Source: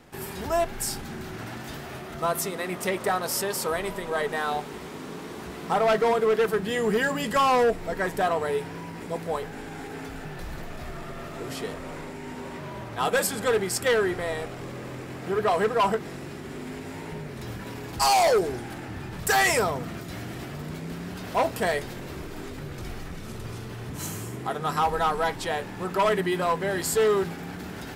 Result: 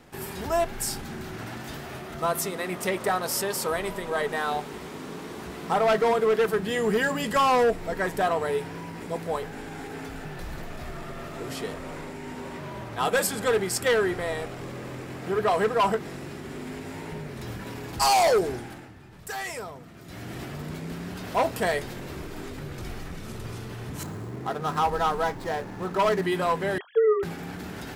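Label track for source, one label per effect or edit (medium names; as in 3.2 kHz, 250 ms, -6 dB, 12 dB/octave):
18.520000	20.370000	dip -12.5 dB, fades 0.42 s
24.030000	26.220000	median filter over 15 samples
26.780000	27.230000	formants replaced by sine waves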